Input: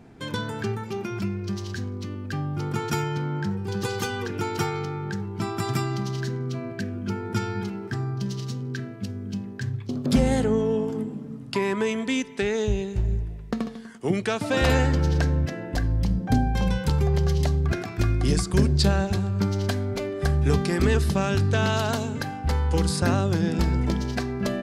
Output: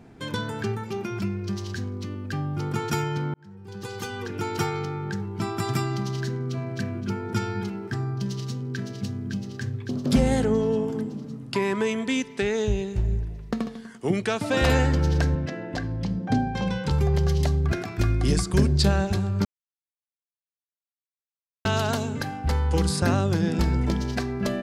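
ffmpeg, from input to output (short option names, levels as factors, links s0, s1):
-filter_complex "[0:a]asplit=2[s0][s1];[s1]afade=t=in:st=6.31:d=0.01,afade=t=out:st=6.74:d=0.01,aecho=0:1:260|520|780|1040:0.630957|0.220835|0.0772923|0.0270523[s2];[s0][s2]amix=inputs=2:normalize=0,asplit=2[s3][s4];[s4]afade=t=in:st=8.22:d=0.01,afade=t=out:st=8.77:d=0.01,aecho=0:1:560|1120|1680|2240|2800|3360|3920|4480|5040|5600|6160|6720:0.530884|0.371619|0.260133|0.182093|0.127465|0.0892257|0.062458|0.0437206|0.0306044|0.0214231|0.0149962|0.0104973[s5];[s3][s5]amix=inputs=2:normalize=0,asettb=1/sr,asplit=3[s6][s7][s8];[s6]atrim=end=15.354[s9];[s7]atrim=start=15.35:end=16.91,asetpts=PTS-STARTPTS,afade=t=in:d=0.004:c=qsin,afade=t=out:st=1.556:d=0.004:c=qsin,highpass=120,lowpass=6000[s10];[s8]atrim=start=16.906[s11];[s9][s10]acrossfade=d=0.004:c1=hsin:c2=qsin[s12];[s12][s11]acrossfade=d=0.004:c1=qsin:c2=hsin,asplit=4[s13][s14][s15][s16];[s13]atrim=end=3.34,asetpts=PTS-STARTPTS,afade=t=out:st=3.336:d=0.004:c=hsin[s17];[s14]atrim=start=3.34:end=19.45,asetpts=PTS-STARTPTS,afade=t=in:d=1.27,afade=t=out:st=16.106:d=0.004:c=hsin[s18];[s15]atrim=start=19.45:end=21.65,asetpts=PTS-STARTPTS,volume=0[s19];[s16]atrim=start=21.65,asetpts=PTS-STARTPTS,afade=t=in:d=0.004:c=hsin[s20];[s17][s18][s19][s20]concat=n=4:v=0:a=1"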